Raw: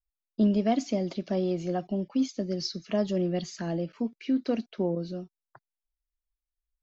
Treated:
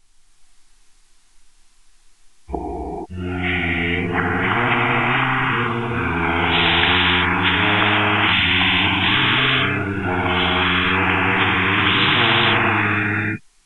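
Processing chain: whole clip reversed; Butterworth band-stop 1100 Hz, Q 2.1; non-linear reverb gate 0.26 s flat, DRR -5 dB; speed mistake 15 ips tape played at 7.5 ips; spectral compressor 10:1; gain +5 dB

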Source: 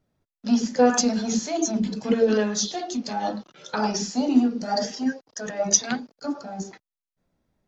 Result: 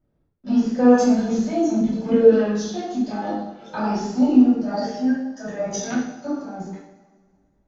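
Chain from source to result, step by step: LPF 1100 Hz 6 dB/oct; low shelf 67 Hz +7.5 dB; two-slope reverb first 0.65 s, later 1.9 s, from -16 dB, DRR -9 dB; gain -5.5 dB

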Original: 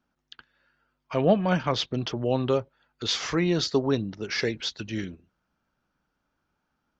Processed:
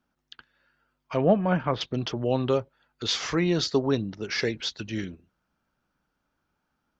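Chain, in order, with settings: 1.17–1.81 LPF 2000 Hz 12 dB/oct

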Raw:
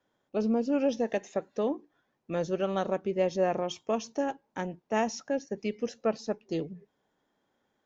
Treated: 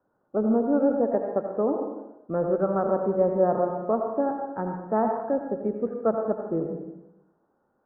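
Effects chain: elliptic low-pass 1400 Hz, stop band 60 dB; on a send: reverb RT60 0.95 s, pre-delay 73 ms, DRR 3 dB; on the sum: gain +4.5 dB

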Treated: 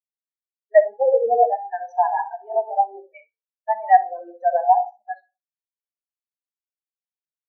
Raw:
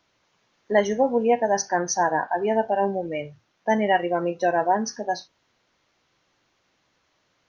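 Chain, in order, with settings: HPF 650 Hz 6 dB/oct; treble ducked by the level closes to 1500 Hz, closed at -21.5 dBFS; tilt shelf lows -9.5 dB, about 1300 Hz; in parallel at -10.5 dB: sample gate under -36 dBFS; on the sum: flutter echo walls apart 10.9 m, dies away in 0.69 s; on a send at -7.5 dB: reverb RT60 0.70 s, pre-delay 79 ms; on the sum: spectral expander 4:1; gain +8 dB

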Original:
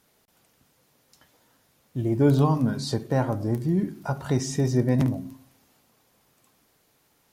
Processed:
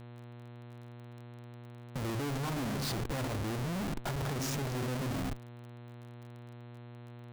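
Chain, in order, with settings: Schmitt trigger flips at -37 dBFS; crackle 25/s -38 dBFS; buzz 120 Hz, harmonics 35, -41 dBFS -7 dB/oct; gain -7.5 dB

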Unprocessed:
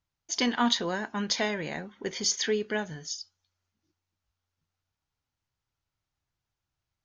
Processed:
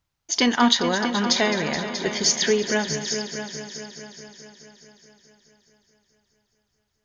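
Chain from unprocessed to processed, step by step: multi-head echo 0.213 s, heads all three, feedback 52%, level -13.5 dB; gain +7 dB

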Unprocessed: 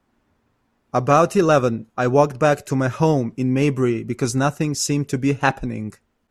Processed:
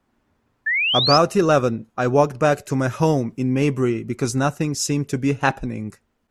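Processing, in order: 0.66–1.18 painted sound rise 1700–5400 Hz -19 dBFS; 2.73–3.38 high shelf 7900 Hz +8 dB; gain -1 dB

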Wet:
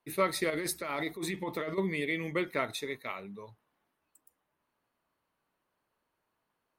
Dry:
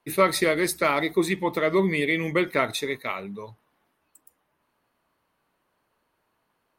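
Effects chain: 0.5–1.78 negative-ratio compressor -26 dBFS, ratio -1; gain -8.5 dB

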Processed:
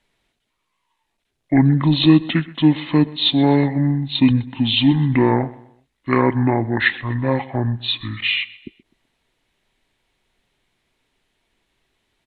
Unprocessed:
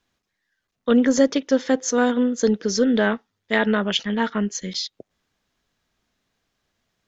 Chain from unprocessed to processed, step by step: graphic EQ 125/250/1000/2000 Hz -7/-7/-3/-8 dB; feedback echo 73 ms, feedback 37%, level -20 dB; speed mistake 78 rpm record played at 45 rpm; gain +8 dB

